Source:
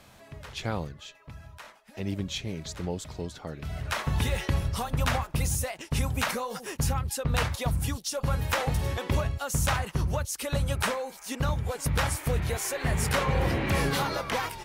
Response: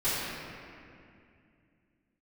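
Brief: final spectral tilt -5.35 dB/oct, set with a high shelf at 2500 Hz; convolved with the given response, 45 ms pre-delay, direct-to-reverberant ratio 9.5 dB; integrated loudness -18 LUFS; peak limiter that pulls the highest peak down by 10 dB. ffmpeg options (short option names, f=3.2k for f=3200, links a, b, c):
-filter_complex "[0:a]highshelf=f=2.5k:g=-8,alimiter=level_in=2.5dB:limit=-24dB:level=0:latency=1,volume=-2.5dB,asplit=2[a][b];[1:a]atrim=start_sample=2205,adelay=45[c];[b][c]afir=irnorm=-1:irlink=0,volume=-21dB[d];[a][d]amix=inputs=2:normalize=0,volume=17.5dB"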